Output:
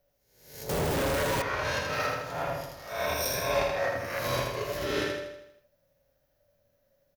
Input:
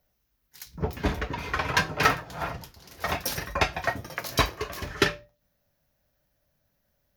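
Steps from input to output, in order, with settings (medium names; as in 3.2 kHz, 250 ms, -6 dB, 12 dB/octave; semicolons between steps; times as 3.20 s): reverse spectral sustain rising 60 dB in 0.67 s; compression 6:1, threshold -25 dBFS, peak gain reduction 11.5 dB; peaking EQ 550 Hz +14 dB 0.35 oct; flange 0.84 Hz, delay 6.9 ms, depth 2 ms, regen -40%; 2.89–3.54 s: rippled EQ curve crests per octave 1.6, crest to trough 11 dB; feedback delay 80 ms, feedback 51%, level -3.5 dB; 0.69–1.42 s: companded quantiser 2-bit; trim -1.5 dB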